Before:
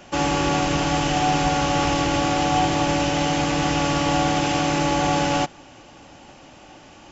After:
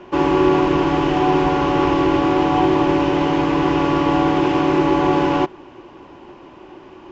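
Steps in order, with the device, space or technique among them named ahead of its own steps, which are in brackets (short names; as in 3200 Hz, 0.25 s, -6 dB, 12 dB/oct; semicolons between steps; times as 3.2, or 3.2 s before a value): inside a cardboard box (LPF 2900 Hz 12 dB/oct; small resonant body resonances 370/1000 Hz, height 17 dB, ringing for 55 ms)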